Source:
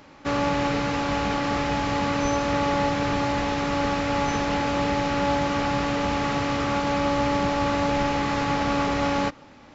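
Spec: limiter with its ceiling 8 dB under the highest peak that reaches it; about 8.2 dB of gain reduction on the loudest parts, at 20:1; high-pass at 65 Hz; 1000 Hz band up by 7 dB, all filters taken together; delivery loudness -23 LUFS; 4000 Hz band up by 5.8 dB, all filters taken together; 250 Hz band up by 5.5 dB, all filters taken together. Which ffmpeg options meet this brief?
-af "highpass=65,equalizer=f=250:t=o:g=6,equalizer=f=1k:t=o:g=8,equalizer=f=4k:t=o:g=7,acompressor=threshold=-22dB:ratio=20,volume=7dB,alimiter=limit=-14.5dB:level=0:latency=1"

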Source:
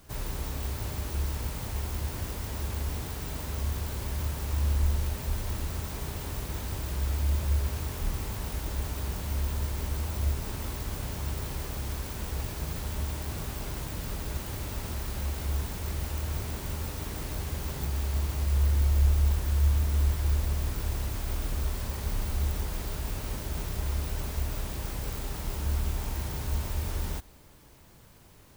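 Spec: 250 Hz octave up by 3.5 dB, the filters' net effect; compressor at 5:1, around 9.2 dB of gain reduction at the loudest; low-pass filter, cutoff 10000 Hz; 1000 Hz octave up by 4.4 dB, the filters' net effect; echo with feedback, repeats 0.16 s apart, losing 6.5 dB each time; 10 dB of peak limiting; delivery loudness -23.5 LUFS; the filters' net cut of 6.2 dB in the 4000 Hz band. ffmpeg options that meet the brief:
-af "lowpass=10k,equalizer=f=250:t=o:g=4.5,equalizer=f=1k:t=o:g=5.5,equalizer=f=4k:t=o:g=-8.5,acompressor=threshold=-29dB:ratio=5,alimiter=level_in=8dB:limit=-24dB:level=0:latency=1,volume=-8dB,aecho=1:1:160|320|480|640|800|960:0.473|0.222|0.105|0.0491|0.0231|0.0109,volume=17dB"

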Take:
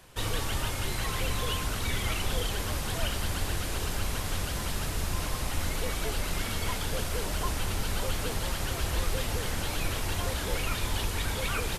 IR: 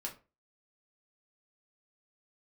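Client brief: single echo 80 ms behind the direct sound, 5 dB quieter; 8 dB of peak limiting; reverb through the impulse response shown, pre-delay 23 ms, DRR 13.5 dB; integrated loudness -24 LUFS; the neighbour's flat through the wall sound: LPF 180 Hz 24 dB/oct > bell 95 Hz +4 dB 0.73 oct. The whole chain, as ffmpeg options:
-filter_complex "[0:a]alimiter=limit=-24dB:level=0:latency=1,aecho=1:1:80:0.562,asplit=2[a][b];[1:a]atrim=start_sample=2205,adelay=23[c];[b][c]afir=irnorm=-1:irlink=0,volume=-12.5dB[d];[a][d]amix=inputs=2:normalize=0,lowpass=f=180:w=0.5412,lowpass=f=180:w=1.3066,equalizer=f=95:t=o:w=0.73:g=4,volume=12.5dB"

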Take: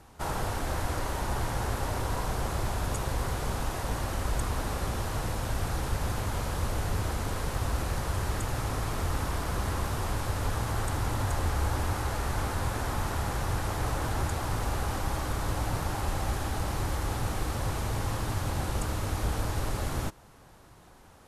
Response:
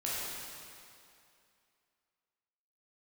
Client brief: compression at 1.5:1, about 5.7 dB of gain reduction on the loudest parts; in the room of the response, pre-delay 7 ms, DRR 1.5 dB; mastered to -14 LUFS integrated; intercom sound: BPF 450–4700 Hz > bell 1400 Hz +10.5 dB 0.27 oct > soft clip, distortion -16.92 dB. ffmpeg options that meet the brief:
-filter_complex "[0:a]acompressor=threshold=-41dB:ratio=1.5,asplit=2[a][b];[1:a]atrim=start_sample=2205,adelay=7[c];[b][c]afir=irnorm=-1:irlink=0,volume=-7dB[d];[a][d]amix=inputs=2:normalize=0,highpass=450,lowpass=4.7k,equalizer=f=1.4k:t=o:w=0.27:g=10.5,asoftclip=threshold=-32dB,volume=25dB"

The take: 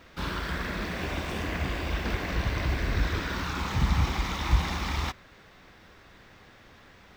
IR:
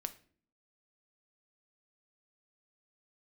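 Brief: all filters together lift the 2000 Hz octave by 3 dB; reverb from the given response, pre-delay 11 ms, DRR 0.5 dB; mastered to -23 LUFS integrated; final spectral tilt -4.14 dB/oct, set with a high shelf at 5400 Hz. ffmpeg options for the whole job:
-filter_complex "[0:a]equalizer=f=2k:t=o:g=4,highshelf=f=5.4k:g=-3,asplit=2[a][b];[1:a]atrim=start_sample=2205,adelay=11[c];[b][c]afir=irnorm=-1:irlink=0,volume=1dB[d];[a][d]amix=inputs=2:normalize=0,volume=3.5dB"

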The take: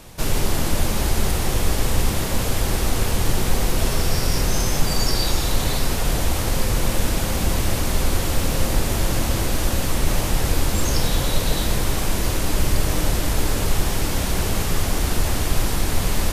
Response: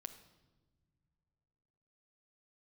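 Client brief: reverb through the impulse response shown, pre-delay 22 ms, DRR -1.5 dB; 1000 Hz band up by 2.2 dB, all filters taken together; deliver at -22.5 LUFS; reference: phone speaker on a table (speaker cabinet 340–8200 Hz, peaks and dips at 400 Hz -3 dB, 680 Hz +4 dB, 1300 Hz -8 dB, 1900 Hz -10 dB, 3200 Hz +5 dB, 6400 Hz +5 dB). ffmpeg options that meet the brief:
-filter_complex "[0:a]equalizer=f=1k:t=o:g=3.5,asplit=2[a][b];[1:a]atrim=start_sample=2205,adelay=22[c];[b][c]afir=irnorm=-1:irlink=0,volume=6.5dB[d];[a][d]amix=inputs=2:normalize=0,highpass=f=340:w=0.5412,highpass=f=340:w=1.3066,equalizer=f=400:t=q:w=4:g=-3,equalizer=f=680:t=q:w=4:g=4,equalizer=f=1.3k:t=q:w=4:g=-8,equalizer=f=1.9k:t=q:w=4:g=-10,equalizer=f=3.2k:t=q:w=4:g=5,equalizer=f=6.4k:t=q:w=4:g=5,lowpass=f=8.2k:w=0.5412,lowpass=f=8.2k:w=1.3066,volume=-1dB"

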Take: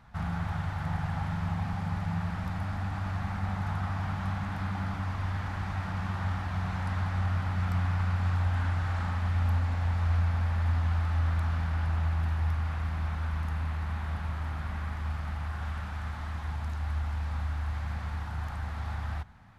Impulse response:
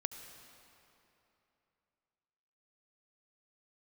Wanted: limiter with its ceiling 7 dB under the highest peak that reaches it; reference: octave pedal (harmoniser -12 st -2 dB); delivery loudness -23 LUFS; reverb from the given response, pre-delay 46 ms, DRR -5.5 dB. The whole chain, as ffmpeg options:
-filter_complex "[0:a]alimiter=level_in=1dB:limit=-24dB:level=0:latency=1,volume=-1dB,asplit=2[a][b];[1:a]atrim=start_sample=2205,adelay=46[c];[b][c]afir=irnorm=-1:irlink=0,volume=6dB[d];[a][d]amix=inputs=2:normalize=0,asplit=2[e][f];[f]asetrate=22050,aresample=44100,atempo=2,volume=-2dB[g];[e][g]amix=inputs=2:normalize=0,volume=3dB"

